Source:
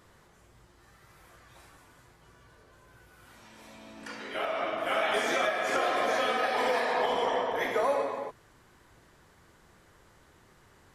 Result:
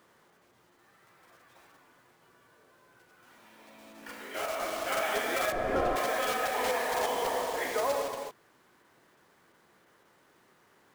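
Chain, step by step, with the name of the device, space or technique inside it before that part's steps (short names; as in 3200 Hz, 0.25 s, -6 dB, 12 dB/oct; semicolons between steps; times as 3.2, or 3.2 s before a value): early digital voice recorder (BPF 210–3500 Hz; block floating point 3-bit); 5.52–5.96 tilt -4.5 dB/oct; gain -2.5 dB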